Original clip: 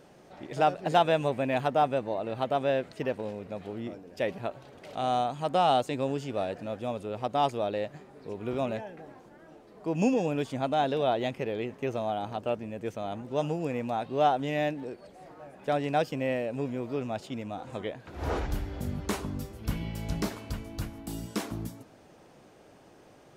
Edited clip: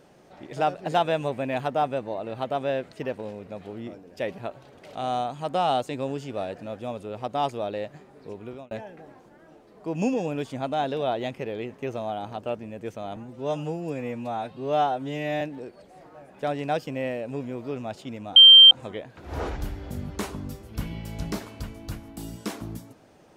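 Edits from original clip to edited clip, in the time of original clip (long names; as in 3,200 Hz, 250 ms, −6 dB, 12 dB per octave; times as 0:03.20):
0:08.30–0:08.71: fade out
0:13.16–0:14.66: time-stretch 1.5×
0:17.61: insert tone 3,150 Hz −6.5 dBFS 0.35 s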